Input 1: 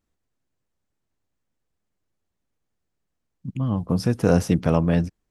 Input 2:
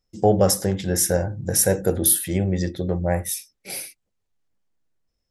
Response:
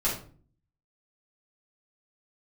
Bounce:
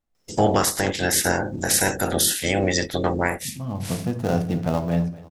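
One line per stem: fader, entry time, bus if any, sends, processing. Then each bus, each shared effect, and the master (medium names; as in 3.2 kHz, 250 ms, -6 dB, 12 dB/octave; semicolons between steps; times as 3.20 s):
-7.5 dB, 0.00 s, send -13.5 dB, echo send -17 dB, dead-time distortion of 0.13 ms; peaking EQ 750 Hz +8 dB 0.4 oct
+2.0 dB, 0.15 s, no send, no echo send, spectral peaks clipped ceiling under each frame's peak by 23 dB; auto duck -6 dB, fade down 0.30 s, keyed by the first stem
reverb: on, RT60 0.45 s, pre-delay 3 ms
echo: feedback delay 247 ms, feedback 45%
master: peak limiter -8.5 dBFS, peak gain reduction 6.5 dB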